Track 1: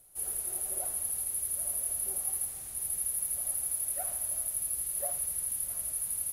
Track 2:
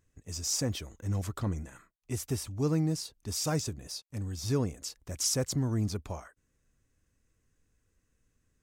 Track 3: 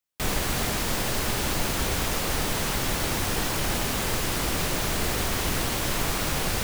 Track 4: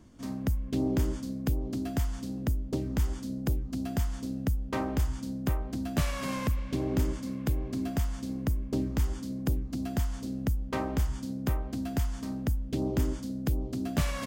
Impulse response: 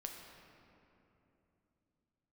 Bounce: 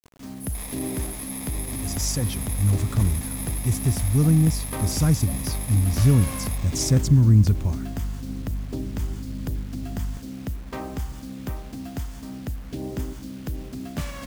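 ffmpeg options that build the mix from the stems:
-filter_complex "[0:a]adelay=250,volume=-3dB[a];[1:a]asubboost=boost=7:cutoff=200,aeval=exprs='val(0)+0.02*(sin(2*PI*50*n/s)+sin(2*PI*2*50*n/s)/2+sin(2*PI*3*50*n/s)/3+sin(2*PI*4*50*n/s)/4+sin(2*PI*5*50*n/s)/5)':c=same,adelay=1550,volume=2.5dB[b];[2:a]acrusher=samples=30:mix=1:aa=0.000001,tiltshelf=f=750:g=-9,adelay=350,volume=-15.5dB[c];[3:a]aeval=exprs='val(0)+0.00224*(sin(2*PI*50*n/s)+sin(2*PI*2*50*n/s)/2+sin(2*PI*3*50*n/s)/3+sin(2*PI*4*50*n/s)/4+sin(2*PI*5*50*n/s)/5)':c=same,volume=-4dB,asplit=2[d][e];[e]volume=-6dB[f];[4:a]atrim=start_sample=2205[g];[f][g]afir=irnorm=-1:irlink=0[h];[a][b][c][d][h]amix=inputs=5:normalize=0,acrusher=bits=7:mix=0:aa=0.000001"

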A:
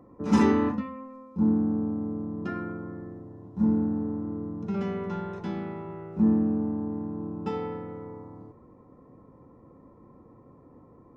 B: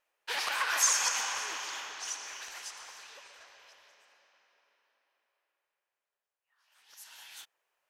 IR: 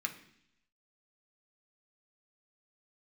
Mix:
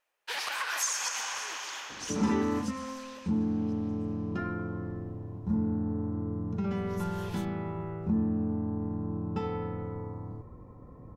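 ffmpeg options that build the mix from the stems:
-filter_complex "[0:a]asubboost=boost=4:cutoff=120,adelay=1900,volume=2.5dB[a];[1:a]volume=0dB[b];[a][b]amix=inputs=2:normalize=0,acompressor=threshold=-31dB:ratio=2"

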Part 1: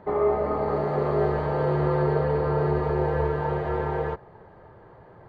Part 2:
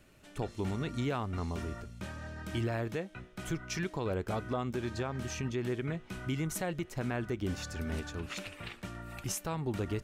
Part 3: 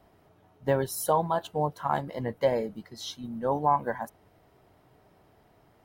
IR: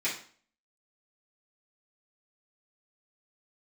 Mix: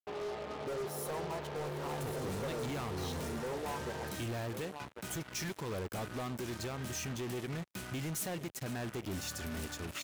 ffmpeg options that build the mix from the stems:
-filter_complex "[0:a]volume=-16.5dB,asplit=2[a][b];[b]volume=-19dB[c];[1:a]aemphasis=mode=production:type=50kf,adelay=1650,volume=-2dB,asplit=2[d][e];[e]volume=-22.5dB[f];[2:a]equalizer=f=390:w=3:g=13.5,acompressor=threshold=-32dB:ratio=2,volume=-6dB,asplit=2[g][h];[h]volume=-12dB[i];[c][f][i]amix=inputs=3:normalize=0,aecho=0:1:1095:1[j];[a][d][g][j]amix=inputs=4:normalize=0,acrusher=bits=6:mix=0:aa=0.5,highpass=75,volume=35dB,asoftclip=hard,volume=-35dB"

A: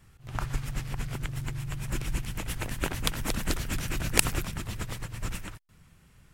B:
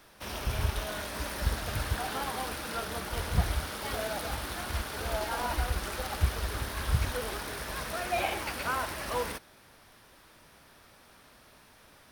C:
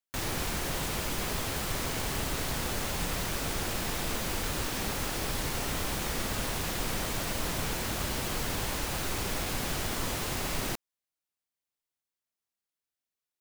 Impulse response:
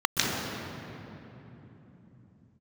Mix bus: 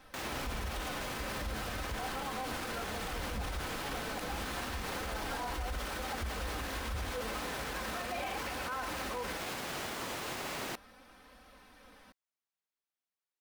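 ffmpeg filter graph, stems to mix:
-filter_complex "[0:a]volume=-13.5dB[a];[1:a]aecho=1:1:3.9:0.76,flanger=delay=1.1:depth=9:regen=66:speed=0.35:shape=triangular,volume=3dB[b];[2:a]highpass=f=410:p=1,volume=-1dB[c];[a][b][c]amix=inputs=3:normalize=0,highshelf=f=4.6k:g=-9,alimiter=level_in=5dB:limit=-24dB:level=0:latency=1,volume=-5dB"

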